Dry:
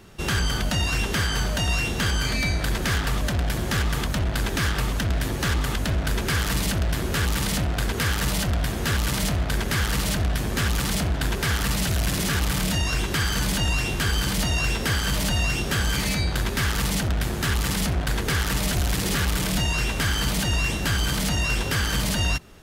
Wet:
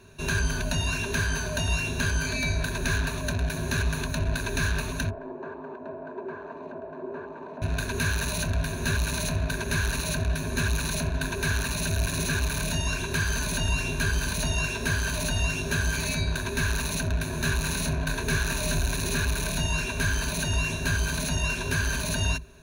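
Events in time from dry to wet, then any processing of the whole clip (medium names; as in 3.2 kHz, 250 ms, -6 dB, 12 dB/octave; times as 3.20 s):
5.10–7.62 s: Chebyshev band-pass 330–910 Hz
17.30–18.94 s: doubling 26 ms -7 dB
whole clip: rippled EQ curve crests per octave 1.5, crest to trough 15 dB; trim -6 dB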